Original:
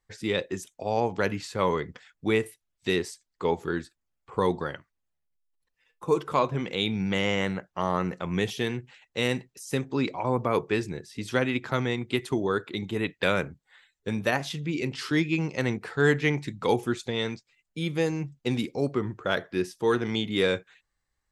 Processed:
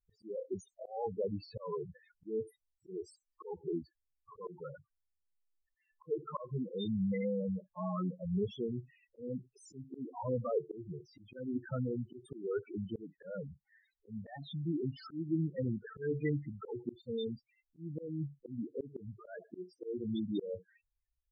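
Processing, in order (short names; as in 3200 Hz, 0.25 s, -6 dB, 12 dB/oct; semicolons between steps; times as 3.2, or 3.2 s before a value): loudest bins only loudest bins 4; auto swell 0.251 s; gain -4 dB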